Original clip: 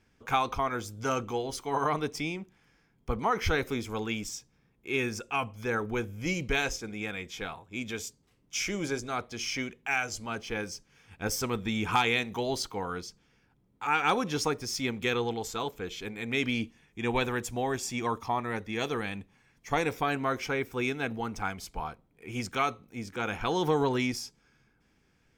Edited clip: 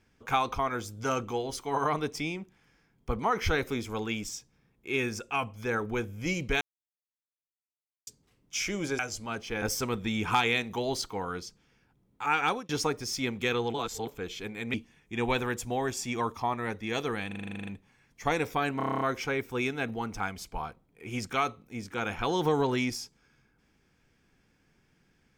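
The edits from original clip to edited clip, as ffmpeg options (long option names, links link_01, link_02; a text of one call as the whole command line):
ffmpeg -i in.wav -filter_complex "[0:a]asplit=27[link_01][link_02][link_03][link_04][link_05][link_06][link_07][link_08][link_09][link_10][link_11][link_12][link_13][link_14][link_15][link_16][link_17][link_18][link_19][link_20][link_21][link_22][link_23][link_24][link_25][link_26][link_27];[link_01]atrim=end=6.61,asetpts=PTS-STARTPTS,afade=type=out:start_time=6.606:duration=0.004:curve=hsin[link_28];[link_02]atrim=start=6.61:end=8.07,asetpts=PTS-STARTPTS,volume=0[link_29];[link_03]atrim=start=8.07:end=8.992,asetpts=PTS-STARTPTS,afade=type=in:duration=0.004:curve=hsin[link_30];[link_04]atrim=start=9.988:end=10.622[link_31];[link_05]atrim=start=11.228:end=14.3,asetpts=PTS-STARTPTS,afade=type=out:start_time=2.812:duration=0.26[link_32];[link_06]atrim=start=14.3:end=15.352,asetpts=PTS-STARTPTS,afade=type=in:duration=0.004:curve=hsin[link_33];[link_07]atrim=start=15.348:end=15.682,asetpts=PTS-STARTPTS,areverse[link_34];[link_08]atrim=start=15.678:end=16.352[link_35];[link_09]atrim=start=16.598:end=19.172[link_36];[link_10]atrim=start=19.128:end=19.172[link_37];[link_11]atrim=start=19.128:end=19.172[link_38];[link_12]atrim=start=19.128:end=19.172[link_39];[link_13]atrim=start=19.128:end=19.172[link_40];[link_14]atrim=start=19.128:end=19.172[link_41];[link_15]atrim=start=19.128:end=19.172[link_42];[link_16]atrim=start=19.128:end=19.172[link_43];[link_17]atrim=start=19.128:end=19.172[link_44];[link_18]atrim=start=19.128:end=19.172[link_45];[link_19]atrim=start=19.128:end=20.262[link_46];[link_20]atrim=start=20.228:end=20.262[link_47];[link_21]atrim=start=20.228:end=20.262[link_48];[link_22]atrim=start=20.228:end=20.262[link_49];[link_23]atrim=start=20.228:end=20.262[link_50];[link_24]atrim=start=20.228:end=20.262[link_51];[link_25]atrim=start=20.228:end=20.262[link_52];[link_26]atrim=start=20.228:end=20.262[link_53];[link_27]atrim=start=20.228[link_54];[link_28][link_29][link_30]concat=n=3:v=0:a=1[link_55];[link_55][link_31]acrossfade=duration=0.004:curve1=hsin:curve2=hsin[link_56];[link_32][link_33]concat=n=2:v=0:a=1[link_57];[link_56][link_57]acrossfade=duration=0.004:curve1=hsin:curve2=hsin[link_58];[link_58][link_34]acrossfade=duration=0.004:curve1=hsin:curve2=hsin[link_59];[link_59][link_35]acrossfade=duration=0.004:curve1=hsin:curve2=hsin[link_60];[link_60][link_36]acrossfade=duration=0.004:curve1=hsin:curve2=hsin[link_61];[link_61][link_37]acrossfade=duration=0.004:curve1=hsin:curve2=hsin[link_62];[link_62][link_38]acrossfade=duration=0.004:curve1=hsin:curve2=hsin[link_63];[link_63][link_39]acrossfade=duration=0.004:curve1=hsin:curve2=hsin[link_64];[link_64][link_40]acrossfade=duration=0.004:curve1=hsin:curve2=hsin[link_65];[link_65][link_41]acrossfade=duration=0.004:curve1=hsin:curve2=hsin[link_66];[link_66][link_42]acrossfade=duration=0.004:curve1=hsin:curve2=hsin[link_67];[link_67][link_43]acrossfade=duration=0.004:curve1=hsin:curve2=hsin[link_68];[link_68][link_44]acrossfade=duration=0.004:curve1=hsin:curve2=hsin[link_69];[link_69][link_45]acrossfade=duration=0.004:curve1=hsin:curve2=hsin[link_70];[link_70][link_46]acrossfade=duration=0.004:curve1=hsin:curve2=hsin[link_71];[link_71][link_47]acrossfade=duration=0.004:curve1=hsin:curve2=hsin[link_72];[link_72][link_48]acrossfade=duration=0.004:curve1=hsin:curve2=hsin[link_73];[link_73][link_49]acrossfade=duration=0.004:curve1=hsin:curve2=hsin[link_74];[link_74][link_50]acrossfade=duration=0.004:curve1=hsin:curve2=hsin[link_75];[link_75][link_51]acrossfade=duration=0.004:curve1=hsin:curve2=hsin[link_76];[link_76][link_52]acrossfade=duration=0.004:curve1=hsin:curve2=hsin[link_77];[link_77][link_53]acrossfade=duration=0.004:curve1=hsin:curve2=hsin[link_78];[link_78][link_54]acrossfade=duration=0.004:curve1=hsin:curve2=hsin" out.wav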